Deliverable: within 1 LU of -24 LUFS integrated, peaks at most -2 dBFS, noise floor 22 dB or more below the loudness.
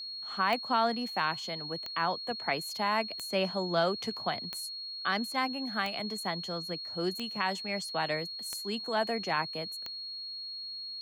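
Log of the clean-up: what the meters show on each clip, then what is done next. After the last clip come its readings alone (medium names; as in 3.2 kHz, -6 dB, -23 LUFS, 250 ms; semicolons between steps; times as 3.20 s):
clicks found 8; steady tone 4.3 kHz; tone level -38 dBFS; loudness -32.5 LUFS; peak level -15.0 dBFS; loudness target -24.0 LUFS
-> de-click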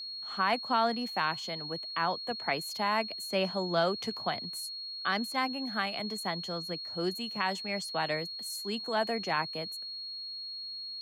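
clicks found 0; steady tone 4.3 kHz; tone level -38 dBFS
-> band-stop 4.3 kHz, Q 30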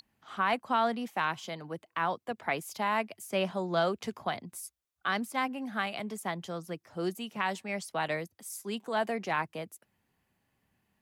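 steady tone not found; loudness -33.5 LUFS; peak level -15.5 dBFS; loudness target -24.0 LUFS
-> trim +9.5 dB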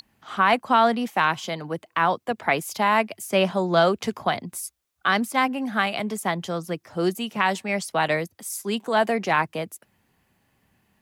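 loudness -24.0 LUFS; peak level -6.0 dBFS; noise floor -71 dBFS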